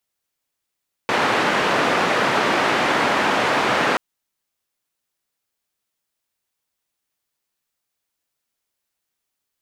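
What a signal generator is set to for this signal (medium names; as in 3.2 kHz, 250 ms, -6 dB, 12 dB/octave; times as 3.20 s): noise band 210–1600 Hz, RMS -19 dBFS 2.88 s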